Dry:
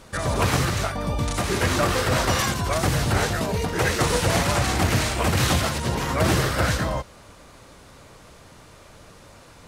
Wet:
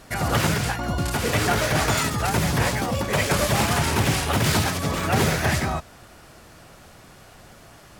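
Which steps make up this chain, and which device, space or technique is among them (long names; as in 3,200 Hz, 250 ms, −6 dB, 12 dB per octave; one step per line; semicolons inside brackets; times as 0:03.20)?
nightcore (speed change +21%)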